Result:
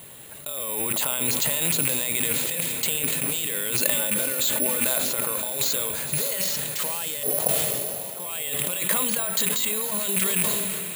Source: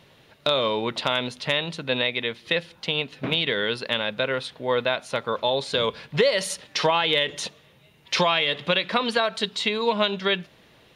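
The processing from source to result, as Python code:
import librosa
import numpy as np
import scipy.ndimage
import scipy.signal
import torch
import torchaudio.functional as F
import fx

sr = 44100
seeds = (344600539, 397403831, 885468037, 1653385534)

y = fx.rattle_buzz(x, sr, strikes_db=-38.0, level_db=-23.0)
y = fx.comb(y, sr, ms=3.4, depth=0.79, at=(3.79, 4.86))
y = fx.over_compress(y, sr, threshold_db=-32.0, ratio=-1.0)
y = fx.lowpass_res(y, sr, hz=690.0, q=4.9, at=(7.23, 8.2))
y = fx.echo_diffused(y, sr, ms=540, feedback_pct=64, wet_db=-11)
y = (np.kron(scipy.signal.resample_poly(y, 1, 4), np.eye(4)[0]) * 4)[:len(y)]
y = fx.sustainer(y, sr, db_per_s=22.0)
y = y * librosa.db_to_amplitude(-2.0)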